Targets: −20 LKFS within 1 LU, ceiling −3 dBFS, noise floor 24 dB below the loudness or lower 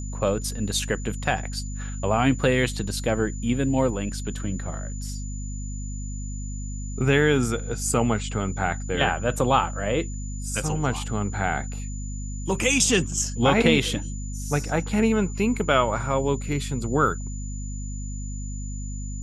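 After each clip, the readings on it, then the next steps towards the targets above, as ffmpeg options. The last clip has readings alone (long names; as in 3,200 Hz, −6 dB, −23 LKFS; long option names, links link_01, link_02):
mains hum 50 Hz; hum harmonics up to 250 Hz; level of the hum −29 dBFS; interfering tone 7,000 Hz; level of the tone −41 dBFS; integrated loudness −25.5 LKFS; sample peak −4.5 dBFS; target loudness −20.0 LKFS
→ -af "bandreject=frequency=50:width_type=h:width=4,bandreject=frequency=100:width_type=h:width=4,bandreject=frequency=150:width_type=h:width=4,bandreject=frequency=200:width_type=h:width=4,bandreject=frequency=250:width_type=h:width=4"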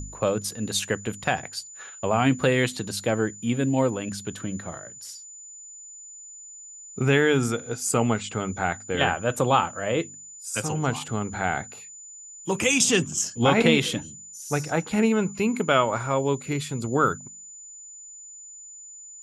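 mains hum none found; interfering tone 7,000 Hz; level of the tone −41 dBFS
→ -af "bandreject=frequency=7000:width=30"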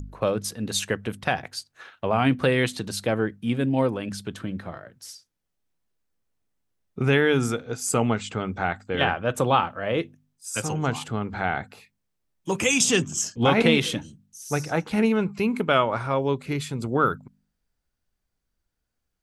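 interfering tone none found; integrated loudness −24.5 LKFS; sample peak −5.0 dBFS; target loudness −20.0 LKFS
→ -af "volume=4.5dB,alimiter=limit=-3dB:level=0:latency=1"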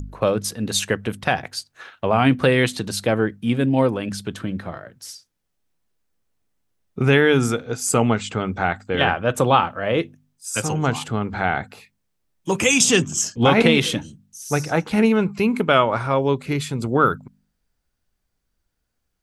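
integrated loudness −20.5 LKFS; sample peak −3.0 dBFS; background noise floor −75 dBFS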